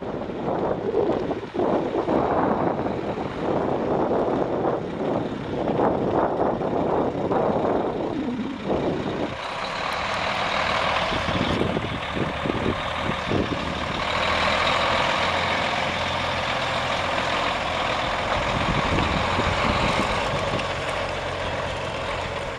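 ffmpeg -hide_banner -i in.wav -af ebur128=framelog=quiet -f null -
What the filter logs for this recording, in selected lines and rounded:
Integrated loudness:
  I:         -23.9 LUFS
  Threshold: -33.9 LUFS
Loudness range:
  LRA:         2.6 LU
  Threshold: -43.8 LUFS
  LRA low:   -25.0 LUFS
  LRA high:  -22.4 LUFS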